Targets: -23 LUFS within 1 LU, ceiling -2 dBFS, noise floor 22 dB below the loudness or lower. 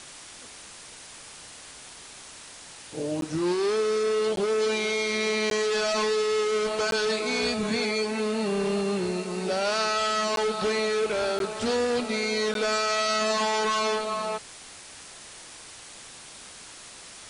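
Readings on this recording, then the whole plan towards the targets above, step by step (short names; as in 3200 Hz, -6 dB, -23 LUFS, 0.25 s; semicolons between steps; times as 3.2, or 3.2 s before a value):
dropouts 7; longest dropout 12 ms; noise floor -45 dBFS; noise floor target -48 dBFS; loudness -26.0 LUFS; peak -17.0 dBFS; loudness target -23.0 LUFS
-> interpolate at 3.21/4.36/5.5/6.91/10.36/11.39/12.54, 12 ms; denoiser 6 dB, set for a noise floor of -45 dBFS; gain +3 dB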